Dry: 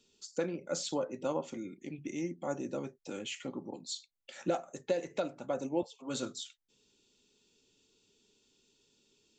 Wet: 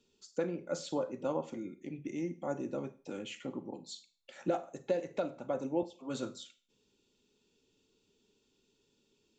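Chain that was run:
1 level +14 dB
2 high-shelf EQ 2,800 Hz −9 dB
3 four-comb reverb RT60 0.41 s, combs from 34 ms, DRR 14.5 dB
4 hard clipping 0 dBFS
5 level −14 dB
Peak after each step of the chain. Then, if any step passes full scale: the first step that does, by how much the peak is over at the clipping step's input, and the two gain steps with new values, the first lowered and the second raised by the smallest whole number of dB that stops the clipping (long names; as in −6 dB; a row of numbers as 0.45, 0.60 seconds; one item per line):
−4.0, −5.0, −5.0, −5.0, −19.0 dBFS
no step passes full scale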